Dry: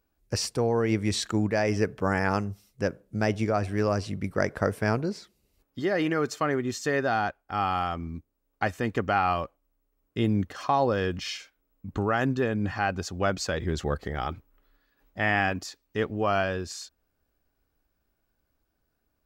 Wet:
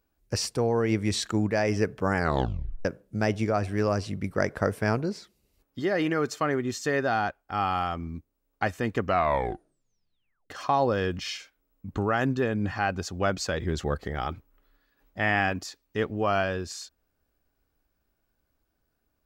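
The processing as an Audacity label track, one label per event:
2.160000	2.160000	tape stop 0.69 s
9.020000	9.020000	tape stop 1.48 s

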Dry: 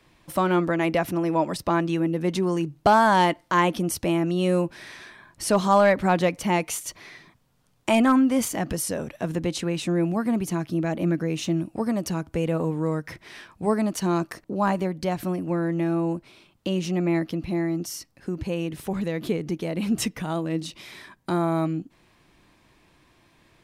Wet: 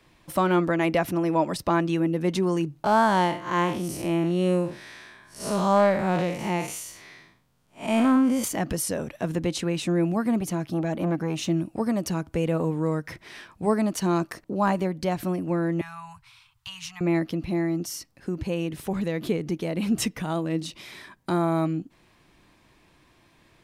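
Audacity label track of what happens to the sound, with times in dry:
2.840000	8.440000	time blur width 0.148 s
10.400000	11.420000	core saturation saturates under 450 Hz
15.810000	17.010000	elliptic band-stop 120–960 Hz

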